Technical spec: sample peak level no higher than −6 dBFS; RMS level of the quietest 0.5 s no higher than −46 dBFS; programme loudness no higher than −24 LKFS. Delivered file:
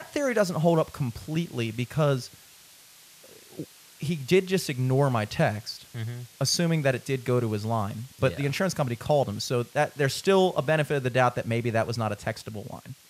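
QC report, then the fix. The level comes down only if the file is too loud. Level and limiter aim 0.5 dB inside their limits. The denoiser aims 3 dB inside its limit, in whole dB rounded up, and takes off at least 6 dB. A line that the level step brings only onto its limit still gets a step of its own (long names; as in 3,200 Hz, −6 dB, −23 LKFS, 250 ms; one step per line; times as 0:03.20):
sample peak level −9.0 dBFS: in spec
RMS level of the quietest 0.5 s −53 dBFS: in spec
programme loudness −26.5 LKFS: in spec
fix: no processing needed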